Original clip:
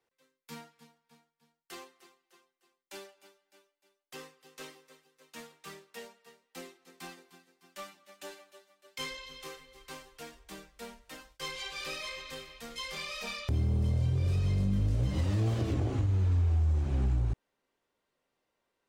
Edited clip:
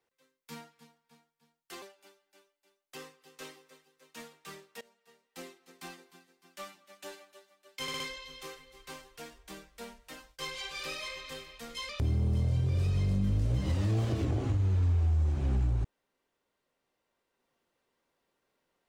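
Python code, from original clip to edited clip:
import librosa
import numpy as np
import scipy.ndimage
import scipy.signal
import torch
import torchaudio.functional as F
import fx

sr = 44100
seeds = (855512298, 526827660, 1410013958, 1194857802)

y = fx.edit(x, sr, fx.cut(start_s=1.82, length_s=1.19),
    fx.fade_in_from(start_s=6.0, length_s=0.61, floor_db=-21.0),
    fx.stutter(start_s=9.01, slice_s=0.06, count=4),
    fx.cut(start_s=12.9, length_s=0.48), tone=tone)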